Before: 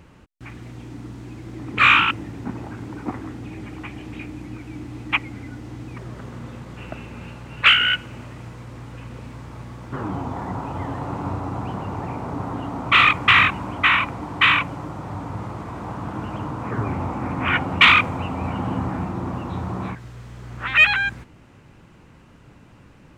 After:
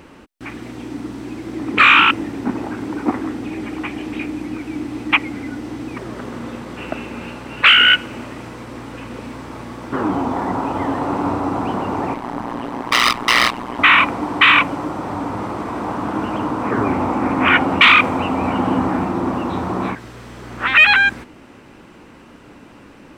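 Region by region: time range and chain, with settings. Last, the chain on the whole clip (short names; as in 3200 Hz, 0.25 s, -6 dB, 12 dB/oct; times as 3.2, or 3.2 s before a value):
12.14–13.79 minimum comb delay 1 ms + HPF 83 Hz + AM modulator 120 Hz, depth 95%
whole clip: resonant low shelf 190 Hz -8.5 dB, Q 1.5; notch 6800 Hz, Q 14; maximiser +9.5 dB; gain -1 dB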